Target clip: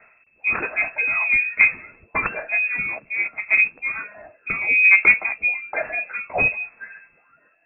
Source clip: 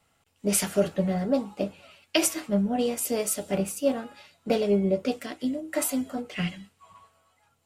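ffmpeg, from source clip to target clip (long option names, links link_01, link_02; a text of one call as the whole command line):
ffmpeg -i in.wav -filter_complex "[0:a]crystalizer=i=7:c=0,asettb=1/sr,asplit=3[link_01][link_02][link_03];[link_01]atrim=end=2.694[link_04];[link_02]atrim=start=2.69:end=4.85,asetpts=PTS-STARTPTS,afade=type=in:duration=0.004:curve=qsin,afade=type=out:start_time=2.156:duration=0.004:curve=qsin,acompressor=threshold=-20dB:ratio=16[link_05];[link_03]atrim=start=4.846[link_06];[link_04][link_05]acrossfade=duration=0.004:curve1=hsin:curve2=qsin[link_07];[link_07][link_06]acrossfade=duration=0.004:curve1=qsin:curve2=hsin,aphaser=in_gain=1:out_gain=1:delay=1:decay=0.79:speed=0.59:type=sinusoidal,acontrast=77,lowpass=frequency=2300:width_type=q:width=0.5098,lowpass=frequency=2300:width_type=q:width=0.6013,lowpass=frequency=2300:width_type=q:width=0.9,lowpass=frequency=2300:width_type=q:width=2.563,afreqshift=-2700,volume=-4dB" out.wav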